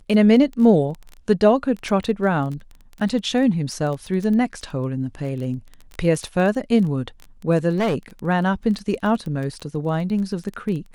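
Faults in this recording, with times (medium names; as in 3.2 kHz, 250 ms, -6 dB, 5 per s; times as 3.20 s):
crackle 15 per s -27 dBFS
7.72–7.95 s: clipped -16.5 dBFS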